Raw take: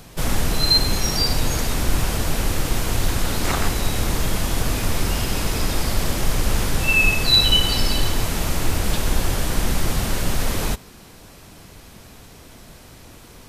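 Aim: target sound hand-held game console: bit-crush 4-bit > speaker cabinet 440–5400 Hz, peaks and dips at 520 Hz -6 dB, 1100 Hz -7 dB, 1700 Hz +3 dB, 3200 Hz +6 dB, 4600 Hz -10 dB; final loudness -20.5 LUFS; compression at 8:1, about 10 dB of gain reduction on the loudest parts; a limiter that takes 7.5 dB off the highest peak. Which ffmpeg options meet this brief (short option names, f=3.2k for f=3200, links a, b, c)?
-af "acompressor=threshold=-23dB:ratio=8,alimiter=limit=-21.5dB:level=0:latency=1,acrusher=bits=3:mix=0:aa=0.000001,highpass=440,equalizer=f=520:t=q:w=4:g=-6,equalizer=f=1.1k:t=q:w=4:g=-7,equalizer=f=1.7k:t=q:w=4:g=3,equalizer=f=3.2k:t=q:w=4:g=6,equalizer=f=4.6k:t=q:w=4:g=-10,lowpass=f=5.4k:w=0.5412,lowpass=f=5.4k:w=1.3066,volume=16dB"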